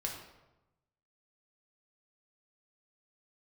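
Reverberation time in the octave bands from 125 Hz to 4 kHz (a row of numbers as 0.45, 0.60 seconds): 1.3, 1.1, 1.0, 1.0, 0.80, 0.65 seconds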